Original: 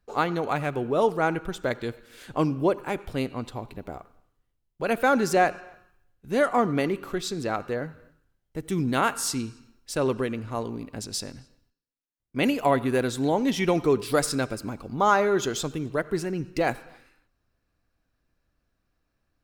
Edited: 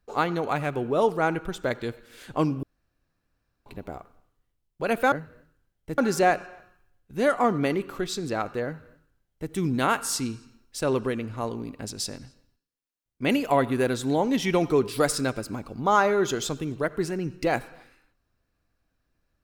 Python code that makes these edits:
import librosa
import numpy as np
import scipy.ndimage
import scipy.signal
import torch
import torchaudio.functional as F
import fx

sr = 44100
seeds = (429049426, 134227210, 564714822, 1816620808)

y = fx.edit(x, sr, fx.room_tone_fill(start_s=2.63, length_s=1.03),
    fx.duplicate(start_s=7.79, length_s=0.86, to_s=5.12), tone=tone)